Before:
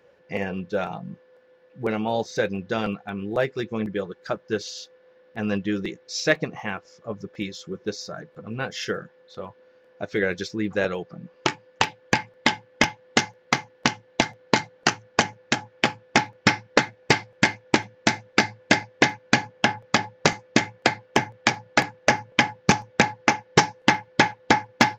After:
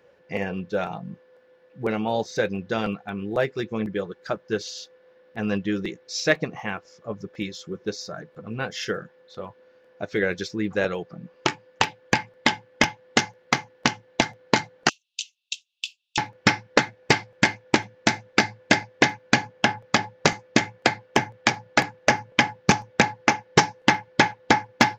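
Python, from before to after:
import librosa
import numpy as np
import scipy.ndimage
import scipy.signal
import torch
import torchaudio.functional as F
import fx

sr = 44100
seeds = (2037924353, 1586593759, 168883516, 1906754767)

y = fx.cheby_ripple_highpass(x, sr, hz=2600.0, ripple_db=6, at=(14.89, 16.18))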